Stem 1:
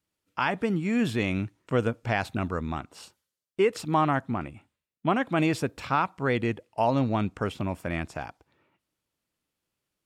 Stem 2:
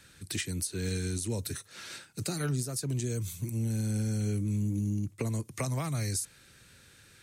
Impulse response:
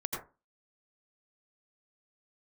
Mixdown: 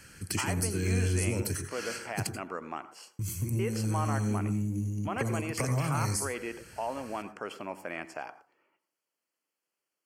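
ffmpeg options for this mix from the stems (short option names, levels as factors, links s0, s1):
-filter_complex "[0:a]alimiter=limit=0.0891:level=0:latency=1:release=37,highpass=390,volume=0.631,asplit=2[s0][s1];[s1]volume=0.188[s2];[1:a]acompressor=threshold=0.0224:ratio=6,volume=1.12,asplit=3[s3][s4][s5];[s3]atrim=end=2.27,asetpts=PTS-STARTPTS,afade=t=out:st=2.266:d=0.004:c=hsin[s6];[s4]atrim=start=2.27:end=3.19,asetpts=PTS-STARTPTS,volume=0[s7];[s5]atrim=start=3.19,asetpts=PTS-STARTPTS,afade=t=in:d=0.004:c=hsin[s8];[s6][s7][s8]concat=n=3:v=0:a=1,asplit=2[s9][s10];[s10]volume=0.631[s11];[2:a]atrim=start_sample=2205[s12];[s2][s11]amix=inputs=2:normalize=0[s13];[s13][s12]afir=irnorm=-1:irlink=0[s14];[s0][s9][s14]amix=inputs=3:normalize=0,asuperstop=centerf=3700:order=4:qfactor=3.9"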